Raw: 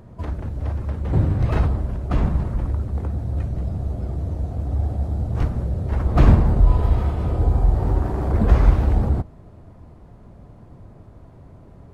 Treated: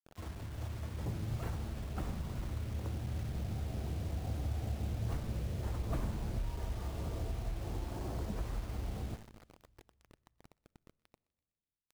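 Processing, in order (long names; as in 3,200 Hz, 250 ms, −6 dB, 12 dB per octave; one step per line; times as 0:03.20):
source passing by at 0:04.83, 22 m/s, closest 17 metres
low-shelf EQ 140 Hz −2 dB
downward compressor 5 to 1, threshold −36 dBFS, peak gain reduction 19.5 dB
tuned comb filter 110 Hz, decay 0.76 s, harmonics all, mix 60%
bit reduction 10 bits
feedback echo with a high-pass in the loop 124 ms, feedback 67%, high-pass 1,200 Hz, level −21.5 dB
on a send at −23.5 dB: convolution reverb RT60 1.7 s, pre-delay 6 ms
on the sum: level +8 dB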